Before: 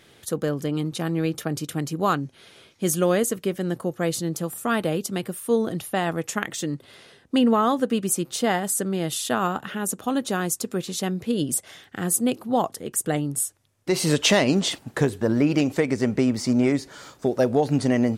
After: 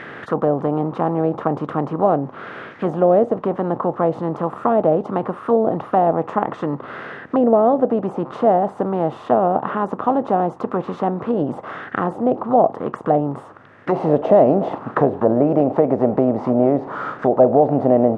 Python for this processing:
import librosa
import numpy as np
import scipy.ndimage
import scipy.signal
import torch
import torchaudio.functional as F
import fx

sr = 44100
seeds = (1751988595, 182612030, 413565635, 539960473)

y = fx.bin_compress(x, sr, power=0.6)
y = fx.low_shelf(y, sr, hz=62.0, db=-9.0)
y = fx.envelope_lowpass(y, sr, base_hz=670.0, top_hz=1900.0, q=3.5, full_db=-14.5, direction='down')
y = y * 10.0 ** (-1.0 / 20.0)